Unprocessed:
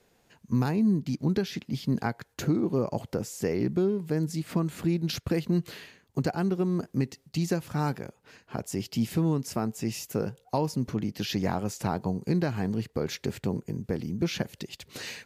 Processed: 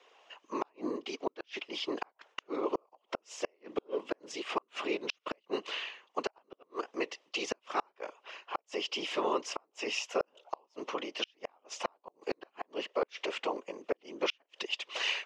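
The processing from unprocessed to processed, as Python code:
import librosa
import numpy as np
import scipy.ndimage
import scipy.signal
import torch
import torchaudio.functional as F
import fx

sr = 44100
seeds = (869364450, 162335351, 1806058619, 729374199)

y = fx.whisperise(x, sr, seeds[0])
y = fx.cabinet(y, sr, low_hz=470.0, low_slope=24, high_hz=5300.0, hz=(490.0, 1100.0, 1600.0, 2900.0, 4400.0), db=(-3, 7, -5, 8, -9))
y = fx.gate_flip(y, sr, shuts_db=-25.0, range_db=-40)
y = y * 10.0 ** (6.0 / 20.0)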